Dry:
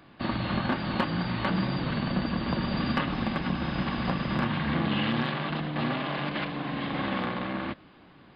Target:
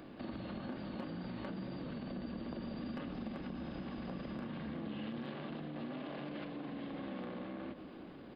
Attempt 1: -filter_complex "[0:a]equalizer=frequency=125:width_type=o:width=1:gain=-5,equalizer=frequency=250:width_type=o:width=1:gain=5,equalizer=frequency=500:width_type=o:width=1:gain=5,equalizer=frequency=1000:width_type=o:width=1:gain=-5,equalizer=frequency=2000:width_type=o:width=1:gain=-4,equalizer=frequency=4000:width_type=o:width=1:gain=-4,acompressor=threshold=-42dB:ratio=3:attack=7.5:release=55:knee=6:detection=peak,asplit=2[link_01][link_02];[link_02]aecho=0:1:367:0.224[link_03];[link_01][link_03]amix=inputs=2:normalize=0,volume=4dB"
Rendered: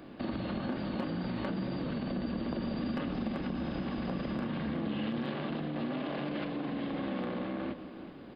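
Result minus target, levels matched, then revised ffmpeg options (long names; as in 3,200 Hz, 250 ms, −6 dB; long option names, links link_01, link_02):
downward compressor: peak gain reduction −8 dB
-filter_complex "[0:a]equalizer=frequency=125:width_type=o:width=1:gain=-5,equalizer=frequency=250:width_type=o:width=1:gain=5,equalizer=frequency=500:width_type=o:width=1:gain=5,equalizer=frequency=1000:width_type=o:width=1:gain=-5,equalizer=frequency=2000:width_type=o:width=1:gain=-4,equalizer=frequency=4000:width_type=o:width=1:gain=-4,acompressor=threshold=-54dB:ratio=3:attack=7.5:release=55:knee=6:detection=peak,asplit=2[link_01][link_02];[link_02]aecho=0:1:367:0.224[link_03];[link_01][link_03]amix=inputs=2:normalize=0,volume=4dB"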